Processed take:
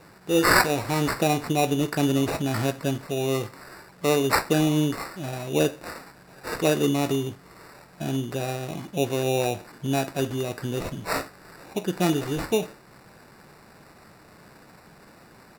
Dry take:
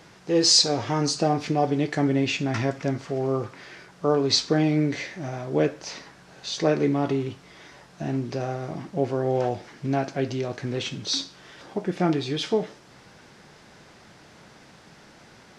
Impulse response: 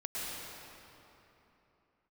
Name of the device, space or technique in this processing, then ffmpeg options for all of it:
crushed at another speed: -af "asetrate=55125,aresample=44100,acrusher=samples=11:mix=1:aa=0.000001,asetrate=35280,aresample=44100"

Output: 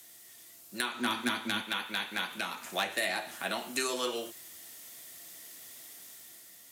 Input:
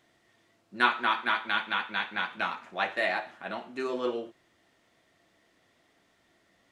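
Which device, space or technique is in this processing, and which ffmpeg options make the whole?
FM broadcast chain: -filter_complex "[0:a]highpass=67,dynaudnorm=f=340:g=5:m=1.78,acrossover=split=250|560[s0][s1][s2];[s0]acompressor=threshold=0.00398:ratio=4[s3];[s1]acompressor=threshold=0.01:ratio=4[s4];[s2]acompressor=threshold=0.0158:ratio=4[s5];[s3][s4][s5]amix=inputs=3:normalize=0,aemphasis=mode=production:type=75fm,alimiter=limit=0.1:level=0:latency=1:release=366,asoftclip=type=hard:threshold=0.0668,lowpass=f=15000:w=0.5412,lowpass=f=15000:w=1.3066,aemphasis=mode=production:type=75fm,asettb=1/sr,asplit=3[s6][s7][s8];[s6]atrim=end=0.944[s9];[s7]atrim=start=0.94:end=1.62,asetpts=PTS-STARTPTS,afade=t=in:d=0.004:c=qsin,afade=t=out:st=0.676:d=0.004:c=qsin,equalizer=f=100:t=o:w=0.67:g=12,equalizer=f=250:t=o:w=0.67:g=11,equalizer=f=6300:t=o:w=0.67:g=4[s10];[s8]atrim=start=1.616[s11];[s9][s10]acrossfade=d=0.004:c1=hsin:c2=qsin[s12];[s12][s11]acrossfade=d=0.004:c1=qsin:c2=hsin,volume=1.12"

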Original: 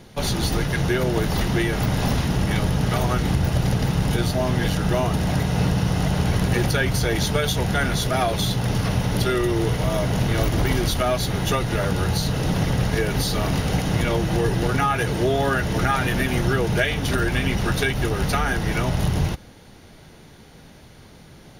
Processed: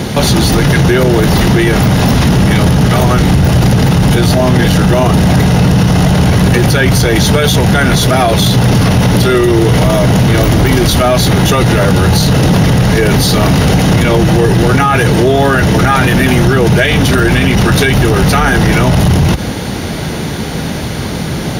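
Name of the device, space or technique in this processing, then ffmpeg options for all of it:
mastering chain: -af "highpass=46,equalizer=f=200:t=o:w=1.6:g=3,acompressor=threshold=0.0708:ratio=2,asoftclip=type=tanh:threshold=0.251,asoftclip=type=hard:threshold=0.15,alimiter=level_in=26.6:limit=0.891:release=50:level=0:latency=1,volume=0.891"

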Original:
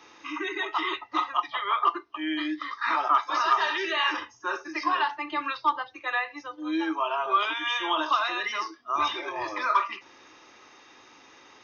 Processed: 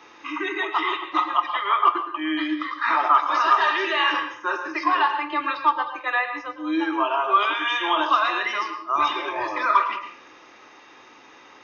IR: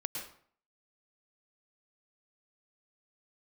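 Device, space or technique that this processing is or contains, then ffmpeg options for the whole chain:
filtered reverb send: -filter_complex "[0:a]asplit=2[s0][s1];[s1]highpass=f=250:p=1,lowpass=3600[s2];[1:a]atrim=start_sample=2205[s3];[s2][s3]afir=irnorm=-1:irlink=0,volume=0.891[s4];[s0][s4]amix=inputs=2:normalize=0"

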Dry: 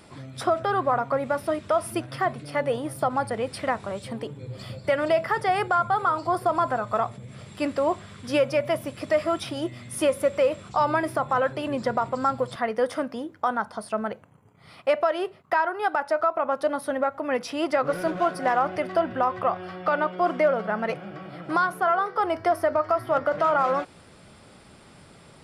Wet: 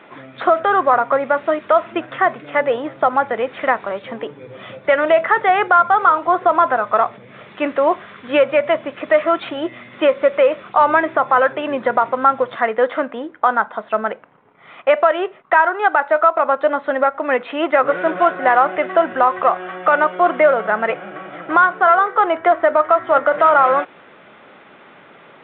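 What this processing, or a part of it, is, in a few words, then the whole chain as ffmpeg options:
telephone: -af "highpass=310,lowpass=3000,equalizer=f=1700:t=o:w=1.3:g=4,volume=2.51" -ar 8000 -c:a pcm_mulaw

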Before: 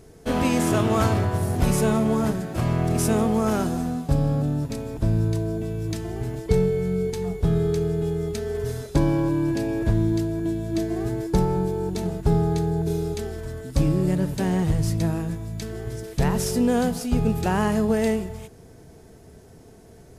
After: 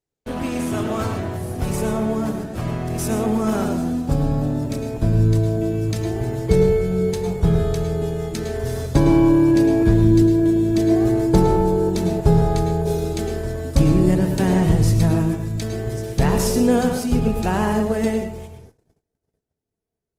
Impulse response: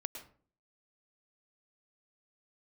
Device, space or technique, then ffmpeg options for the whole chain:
speakerphone in a meeting room: -filter_complex "[1:a]atrim=start_sample=2205[s0];[0:a][s0]afir=irnorm=-1:irlink=0,dynaudnorm=f=610:g=13:m=6.31,agate=range=0.0178:threshold=0.00794:ratio=16:detection=peak,volume=0.841" -ar 48000 -c:a libopus -b:a 20k

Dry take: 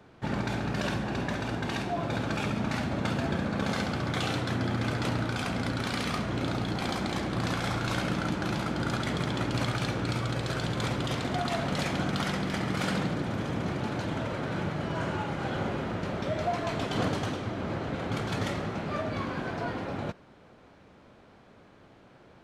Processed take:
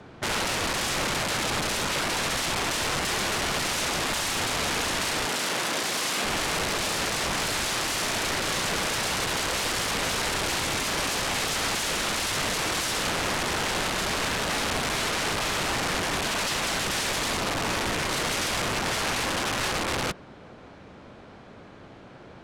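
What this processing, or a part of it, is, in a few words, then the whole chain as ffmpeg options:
overflowing digital effects unit: -filter_complex "[0:a]aeval=exprs='(mod(33.5*val(0)+1,2)-1)/33.5':c=same,lowpass=9900,asettb=1/sr,asplit=3[s0][s1][s2];[s0]atrim=end=5.264[s3];[s1]atrim=start=5.26:end=6.25,asetpts=PTS-STARTPTS,afade=t=in:d=0.004:c=qsin,afade=t=out:st=0.986:d=0.004:c=qsin,highpass=180[s4];[s2]atrim=start=6.246[s5];[s3][s4]acrossfade=d=0.004:c1=hsin:c2=qsin[s6];[s6][s5]acrossfade=d=0.004:c1=qsin:c2=hsin,volume=2.66"

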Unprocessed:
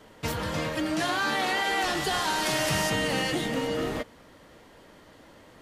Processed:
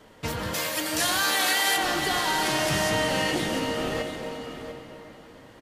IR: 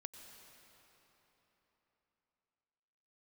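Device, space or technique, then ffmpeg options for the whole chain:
cathedral: -filter_complex "[1:a]atrim=start_sample=2205[s0];[0:a][s0]afir=irnorm=-1:irlink=0,asplit=3[s1][s2][s3];[s1]afade=t=out:st=0.53:d=0.02[s4];[s2]aemphasis=mode=production:type=riaa,afade=t=in:st=0.53:d=0.02,afade=t=out:st=1.76:d=0.02[s5];[s3]afade=t=in:st=1.76:d=0.02[s6];[s4][s5][s6]amix=inputs=3:normalize=0,aecho=1:1:696:0.316,volume=1.88"

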